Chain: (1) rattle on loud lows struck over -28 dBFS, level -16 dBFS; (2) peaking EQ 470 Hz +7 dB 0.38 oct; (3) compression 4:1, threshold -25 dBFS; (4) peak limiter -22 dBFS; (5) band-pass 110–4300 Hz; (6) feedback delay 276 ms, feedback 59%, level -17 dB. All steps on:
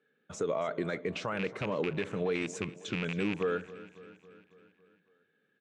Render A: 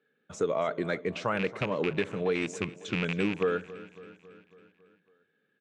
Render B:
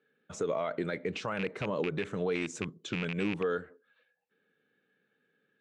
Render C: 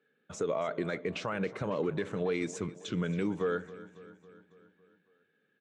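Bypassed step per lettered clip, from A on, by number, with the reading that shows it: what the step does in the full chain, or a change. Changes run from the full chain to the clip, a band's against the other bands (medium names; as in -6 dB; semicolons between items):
4, mean gain reduction 2.0 dB; 6, echo-to-direct -15.0 dB to none; 1, 2 kHz band -2.5 dB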